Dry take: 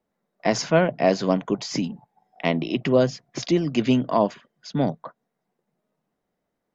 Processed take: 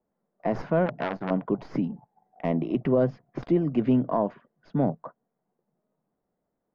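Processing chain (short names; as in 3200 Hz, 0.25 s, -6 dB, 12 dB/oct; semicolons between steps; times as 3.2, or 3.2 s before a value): tracing distortion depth 0.061 ms; LPF 1200 Hz 12 dB/oct; limiter -12.5 dBFS, peak gain reduction 6.5 dB; 0.86–1.31 core saturation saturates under 1200 Hz; gain -1 dB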